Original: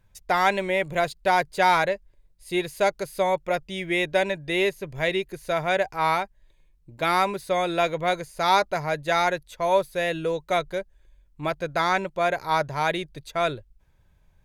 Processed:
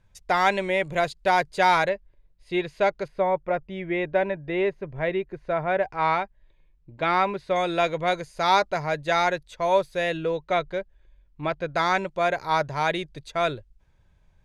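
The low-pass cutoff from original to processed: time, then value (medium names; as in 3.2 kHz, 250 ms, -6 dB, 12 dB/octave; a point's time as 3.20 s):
8.5 kHz
from 1.89 s 3.4 kHz
from 3.08 s 1.7 kHz
from 5.83 s 3.2 kHz
from 7.56 s 7.1 kHz
from 10.17 s 3.9 kHz
from 11.74 s 7.8 kHz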